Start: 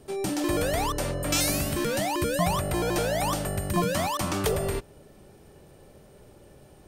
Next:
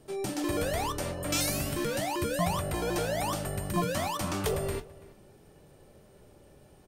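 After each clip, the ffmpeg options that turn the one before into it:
ffmpeg -i in.wav -filter_complex "[0:a]flanger=delay=6.1:depth=7:regen=-57:speed=0.54:shape=triangular,asplit=2[link_01][link_02];[link_02]adelay=332.4,volume=-20dB,highshelf=frequency=4000:gain=-7.48[link_03];[link_01][link_03]amix=inputs=2:normalize=0" out.wav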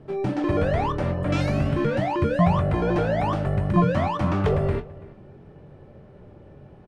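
ffmpeg -i in.wav -filter_complex "[0:a]lowpass=2000,equalizer=frequency=130:width=0.76:gain=6,asplit=2[link_01][link_02];[link_02]adelay=22,volume=-13dB[link_03];[link_01][link_03]amix=inputs=2:normalize=0,volume=6.5dB" out.wav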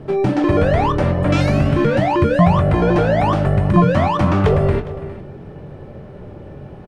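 ffmpeg -i in.wav -filter_complex "[0:a]aecho=1:1:409:0.0841,asplit=2[link_01][link_02];[link_02]acompressor=threshold=-29dB:ratio=6,volume=3dB[link_03];[link_01][link_03]amix=inputs=2:normalize=0,volume=4dB" out.wav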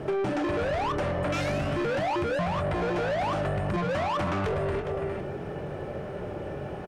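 ffmpeg -i in.wav -filter_complex "[0:a]equalizer=frequency=125:width_type=o:width=1:gain=-4,equalizer=frequency=250:width_type=o:width=1:gain=-8,equalizer=frequency=500:width_type=o:width=1:gain=-5,equalizer=frequency=1000:width_type=o:width=1:gain=-9,equalizer=frequency=2000:width_type=o:width=1:gain=-6,equalizer=frequency=4000:width_type=o:width=1:gain=-9,asplit=2[link_01][link_02];[link_02]highpass=frequency=720:poles=1,volume=26dB,asoftclip=type=tanh:threshold=-8dB[link_03];[link_01][link_03]amix=inputs=2:normalize=0,lowpass=frequency=3200:poles=1,volume=-6dB,acompressor=threshold=-23dB:ratio=6,volume=-3.5dB" out.wav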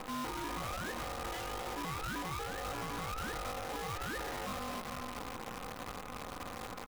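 ffmpeg -i in.wav -af "alimiter=level_in=6dB:limit=-24dB:level=0:latency=1:release=77,volume=-6dB,aeval=exprs='val(0)*sin(2*PI*640*n/s)':channel_layout=same,acrusher=bits=7:dc=4:mix=0:aa=0.000001,volume=-3dB" out.wav

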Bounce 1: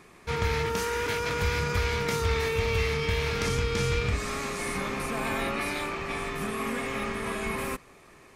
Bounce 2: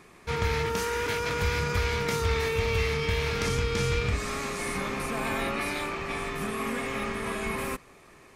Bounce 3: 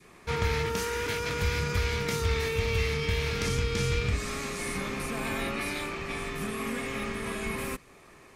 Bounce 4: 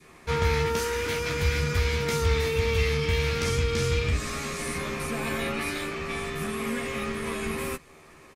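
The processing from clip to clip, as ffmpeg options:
ffmpeg -i in.wav -af anull out.wav
ffmpeg -i in.wav -af "adynamicequalizer=threshold=0.00562:dfrequency=880:dqfactor=0.71:tfrequency=880:tqfactor=0.71:attack=5:release=100:ratio=0.375:range=2.5:mode=cutabove:tftype=bell" out.wav
ffmpeg -i in.wav -filter_complex "[0:a]asplit=2[link_01][link_02];[link_02]adelay=13,volume=-5dB[link_03];[link_01][link_03]amix=inputs=2:normalize=0,volume=1dB" out.wav

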